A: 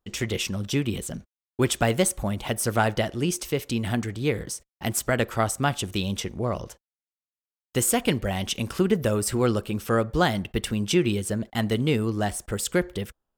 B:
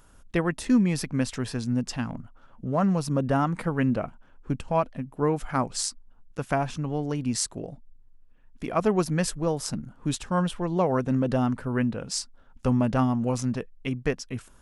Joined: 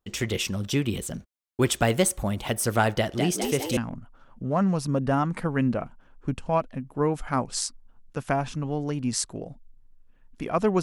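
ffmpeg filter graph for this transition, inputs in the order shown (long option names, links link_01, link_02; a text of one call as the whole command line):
ffmpeg -i cue0.wav -i cue1.wav -filter_complex "[0:a]asettb=1/sr,asplit=3[link_01][link_02][link_03];[link_01]atrim=end=2.954[link_04];[link_02]atrim=start=2.95:end=3.77,asetpts=PTS-STARTPTS,afade=type=in:duration=0.004:curve=qsin,afade=type=out:start_time=0.816:duration=0.004:curve=qsin,asplit=9[link_05][link_06][link_07][link_08][link_09][link_10][link_11][link_12][link_13];[link_06]adelay=205,afreqshift=74,volume=-5dB[link_14];[link_07]adelay=410,afreqshift=148,volume=-9.4dB[link_15];[link_08]adelay=615,afreqshift=222,volume=-13.9dB[link_16];[link_09]adelay=820,afreqshift=296,volume=-18.3dB[link_17];[link_10]adelay=1025,afreqshift=370,volume=-22.7dB[link_18];[link_11]adelay=1230,afreqshift=444,volume=-27.2dB[link_19];[link_12]adelay=1435,afreqshift=518,volume=-31.6dB[link_20];[link_13]adelay=1640,afreqshift=592,volume=-36.1dB[link_21];[link_05][link_14][link_15][link_16][link_17][link_18][link_19][link_20][link_21]amix=inputs=9:normalize=0,atrim=end_sample=36162[link_22];[link_03]atrim=start=3.766[link_23];[link_04][link_22]acrossfade=duration=0.004:curve1=hsin:curve2=qsin[link_24];[link_24][link_23]acrossfade=duration=0.004:curve1=qsin:curve2=hsin,apad=whole_dur=10.82,atrim=end=10.82,atrim=end=3.772[link_25];[1:a]atrim=start=1.988:end=9.04[link_26];[link_25][link_26]acrossfade=duration=0.004:curve1=hsin:curve2=hsin" out.wav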